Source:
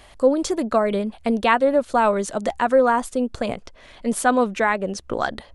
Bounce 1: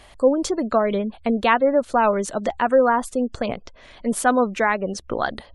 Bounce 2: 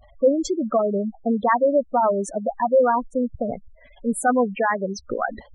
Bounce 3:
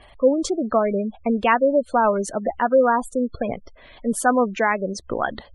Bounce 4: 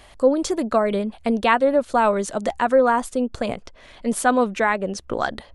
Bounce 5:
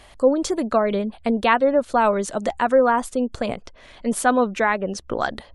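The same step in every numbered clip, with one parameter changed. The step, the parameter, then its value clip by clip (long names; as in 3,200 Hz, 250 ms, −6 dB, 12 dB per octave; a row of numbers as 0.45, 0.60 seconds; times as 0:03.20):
gate on every frequency bin, under each frame's peak: −35, −10, −20, −60, −45 decibels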